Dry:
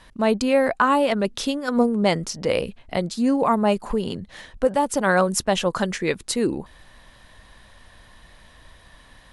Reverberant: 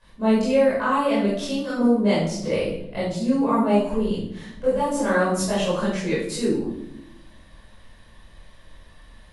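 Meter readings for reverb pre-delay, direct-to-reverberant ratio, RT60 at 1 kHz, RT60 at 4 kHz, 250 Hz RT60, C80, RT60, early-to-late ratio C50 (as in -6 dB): 18 ms, -11.5 dB, 0.65 s, 0.55 s, 1.4 s, 5.0 dB, 0.80 s, 0.5 dB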